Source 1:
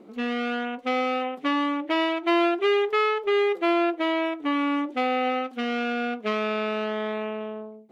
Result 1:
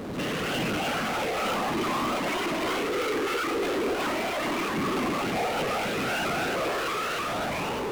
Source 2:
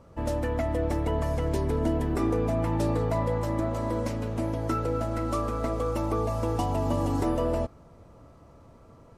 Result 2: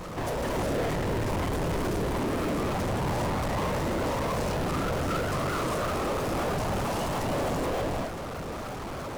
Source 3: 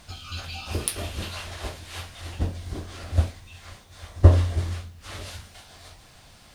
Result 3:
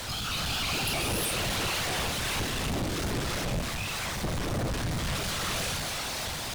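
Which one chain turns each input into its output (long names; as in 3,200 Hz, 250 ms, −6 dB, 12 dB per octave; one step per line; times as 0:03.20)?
low-shelf EQ 270 Hz −6 dB
downward compressor, threshold −31 dBFS
reverb whose tail is shaped and stops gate 440 ms rising, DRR −5.5 dB
random phases in short frames
power curve on the samples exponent 0.35
pitch modulation by a square or saw wave saw up 3.2 Hz, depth 160 cents
level −8 dB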